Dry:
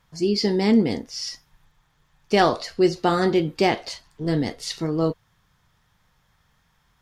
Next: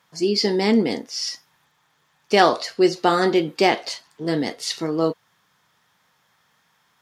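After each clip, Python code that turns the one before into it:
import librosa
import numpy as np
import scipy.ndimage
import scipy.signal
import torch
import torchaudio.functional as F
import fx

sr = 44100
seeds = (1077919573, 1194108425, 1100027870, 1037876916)

y = scipy.signal.sosfilt(scipy.signal.butter(2, 210.0, 'highpass', fs=sr, output='sos'), x)
y = fx.low_shelf(y, sr, hz=410.0, db=-3.5)
y = y * 10.0 ** (4.0 / 20.0)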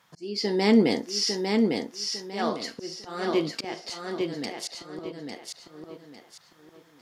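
y = fx.auto_swell(x, sr, attack_ms=664.0)
y = fx.echo_feedback(y, sr, ms=852, feedback_pct=31, wet_db=-4)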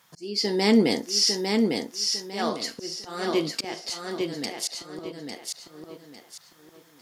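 y = fx.high_shelf(x, sr, hz=5800.0, db=11.5)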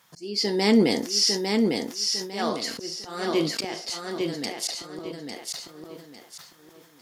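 y = fx.sustainer(x, sr, db_per_s=79.0)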